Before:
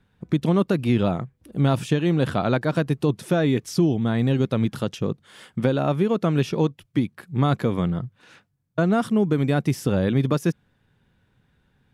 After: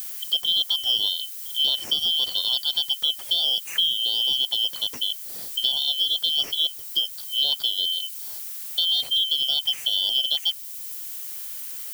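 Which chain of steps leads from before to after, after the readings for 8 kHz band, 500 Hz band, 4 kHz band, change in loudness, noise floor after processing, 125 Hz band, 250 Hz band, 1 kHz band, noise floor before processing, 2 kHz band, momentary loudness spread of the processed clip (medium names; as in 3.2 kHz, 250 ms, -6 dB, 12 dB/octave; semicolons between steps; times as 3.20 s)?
+7.0 dB, -24.0 dB, +21.5 dB, +1.0 dB, -38 dBFS, under -35 dB, under -30 dB, under -15 dB, -67 dBFS, -13.0 dB, 11 LU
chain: four frequency bands reordered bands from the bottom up 3412; added noise violet -36 dBFS; three bands compressed up and down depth 40%; trim -3 dB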